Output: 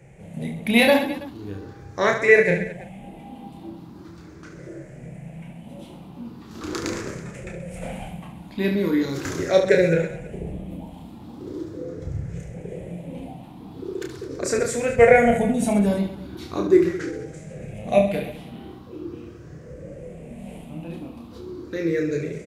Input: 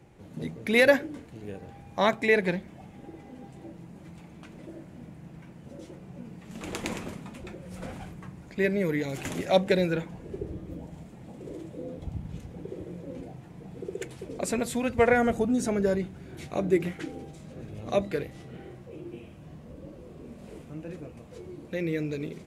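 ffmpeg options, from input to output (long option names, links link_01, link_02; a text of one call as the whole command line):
ffmpeg -i in.wav -af "afftfilt=real='re*pow(10,12/40*sin(2*PI*(0.52*log(max(b,1)*sr/1024/100)/log(2)-(0.4)*(pts-256)/sr)))':imag='im*pow(10,12/40*sin(2*PI*(0.52*log(max(b,1)*sr/1024/100)/log(2)-(0.4)*(pts-256)/sr)))':win_size=1024:overlap=0.75,aecho=1:1:30|72|130.8|213.1|328.4:0.631|0.398|0.251|0.158|0.1,volume=2dB" out.wav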